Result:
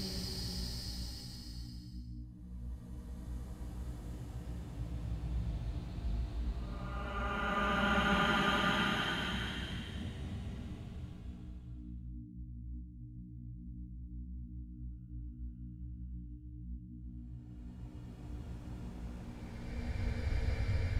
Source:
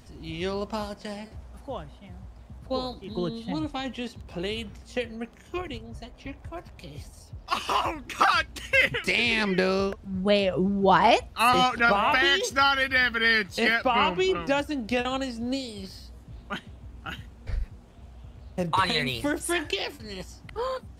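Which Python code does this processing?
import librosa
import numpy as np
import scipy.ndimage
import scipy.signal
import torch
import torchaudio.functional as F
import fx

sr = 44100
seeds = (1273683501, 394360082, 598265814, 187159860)

y = fx.step_gate(x, sr, bpm=78, pattern='..x.xxx.', floor_db=-60.0, edge_ms=4.5)
y = fx.add_hum(y, sr, base_hz=60, snr_db=17)
y = fx.paulstretch(y, sr, seeds[0], factor=13.0, window_s=0.25, from_s=15.9)
y = y * 10.0 ** (2.5 / 20.0)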